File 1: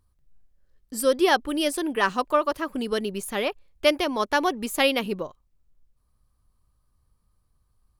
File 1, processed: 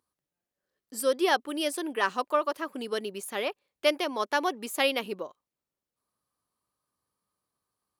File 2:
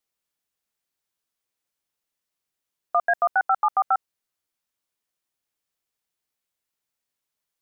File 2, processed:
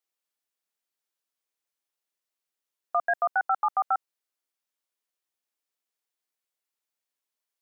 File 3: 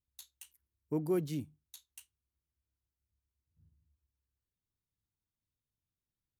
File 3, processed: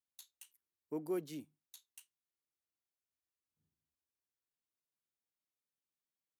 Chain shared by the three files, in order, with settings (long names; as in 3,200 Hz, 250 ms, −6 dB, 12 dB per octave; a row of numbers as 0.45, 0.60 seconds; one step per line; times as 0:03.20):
high-pass filter 290 Hz 12 dB per octave
level −4 dB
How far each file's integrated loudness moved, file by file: −4.5, −4.0, −6.5 LU